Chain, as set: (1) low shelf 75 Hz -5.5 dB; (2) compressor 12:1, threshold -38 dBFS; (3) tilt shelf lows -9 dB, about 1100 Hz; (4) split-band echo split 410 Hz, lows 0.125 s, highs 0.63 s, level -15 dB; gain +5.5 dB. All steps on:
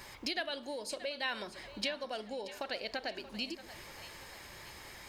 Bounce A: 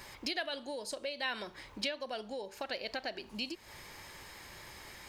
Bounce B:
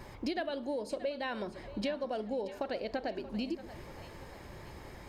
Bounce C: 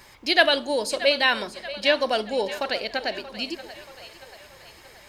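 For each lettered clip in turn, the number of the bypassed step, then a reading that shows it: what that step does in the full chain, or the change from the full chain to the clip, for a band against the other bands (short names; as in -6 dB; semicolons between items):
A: 4, echo-to-direct -13.5 dB to none; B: 3, 4 kHz band -12.5 dB; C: 2, mean gain reduction 8.5 dB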